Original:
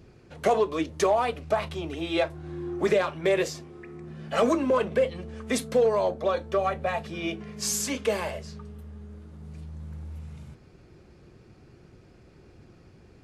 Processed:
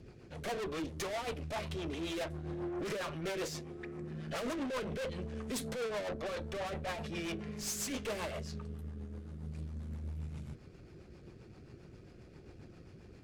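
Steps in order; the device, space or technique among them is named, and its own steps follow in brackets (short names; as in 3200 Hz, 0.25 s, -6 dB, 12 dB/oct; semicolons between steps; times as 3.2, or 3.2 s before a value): overdriven rotary cabinet (tube stage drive 37 dB, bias 0.55; rotary speaker horn 7.5 Hz); gain +3 dB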